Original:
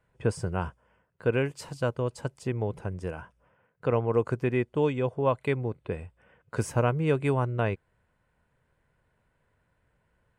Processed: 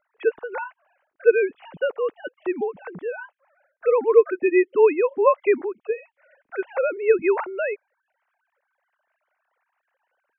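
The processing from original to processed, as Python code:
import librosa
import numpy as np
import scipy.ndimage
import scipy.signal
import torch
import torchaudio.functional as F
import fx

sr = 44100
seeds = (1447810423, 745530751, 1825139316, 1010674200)

y = fx.sine_speech(x, sr)
y = y * librosa.db_to_amplitude(6.5)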